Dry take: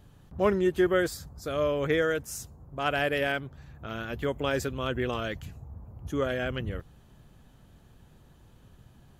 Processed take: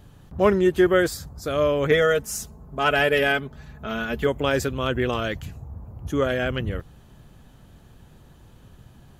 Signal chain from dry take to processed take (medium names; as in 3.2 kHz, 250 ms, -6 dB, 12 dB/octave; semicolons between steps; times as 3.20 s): 1.91–4.27 s: comb 4.7 ms, depth 68%; trim +6 dB